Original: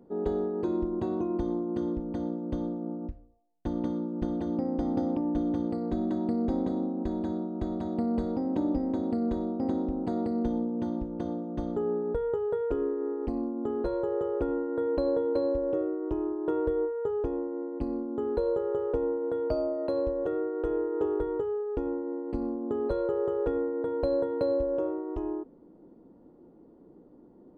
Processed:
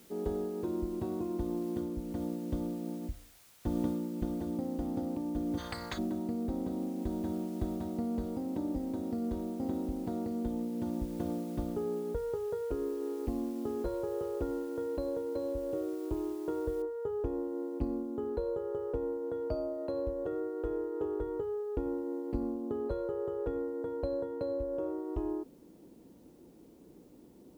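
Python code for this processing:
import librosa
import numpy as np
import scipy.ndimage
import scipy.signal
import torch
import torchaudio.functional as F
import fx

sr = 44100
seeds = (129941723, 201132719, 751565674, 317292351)

y = fx.spectral_comp(x, sr, ratio=10.0, at=(5.57, 5.97), fade=0.02)
y = fx.noise_floor_step(y, sr, seeds[0], at_s=16.82, before_db=-55, after_db=-70, tilt_db=0.0)
y = fx.edit(y, sr, fx.fade_down_up(start_s=1.66, length_s=2.16, db=-8.5, fade_s=0.23), tone=tone)
y = scipy.signal.sosfilt(scipy.signal.butter(2, 45.0, 'highpass', fs=sr, output='sos'), y)
y = fx.low_shelf(y, sr, hz=120.0, db=9.0)
y = fx.rider(y, sr, range_db=10, speed_s=0.5)
y = F.gain(torch.from_numpy(y), -6.5).numpy()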